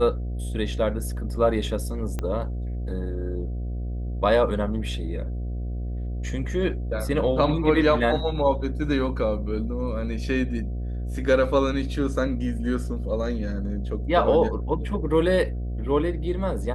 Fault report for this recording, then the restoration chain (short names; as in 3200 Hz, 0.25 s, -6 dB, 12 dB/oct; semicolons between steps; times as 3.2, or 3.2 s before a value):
buzz 60 Hz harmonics 12 -29 dBFS
2.19 pop -16 dBFS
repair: de-click; de-hum 60 Hz, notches 12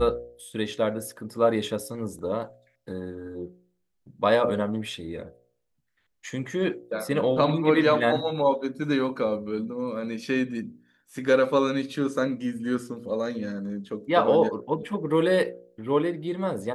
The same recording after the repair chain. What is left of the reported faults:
2.19 pop